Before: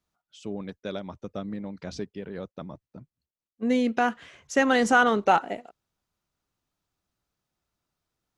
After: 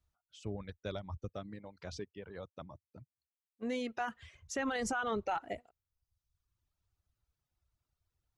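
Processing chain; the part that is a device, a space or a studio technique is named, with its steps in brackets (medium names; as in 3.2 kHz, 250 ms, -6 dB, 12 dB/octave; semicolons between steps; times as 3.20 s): car stereo with a boomy subwoofer (resonant low shelf 130 Hz +13 dB, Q 1.5; peak limiter -20 dBFS, peak gain reduction 11.5 dB); reverb removal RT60 1 s; 1.29–4.01 s: high-pass 260 Hz 6 dB/octave; trim -5.5 dB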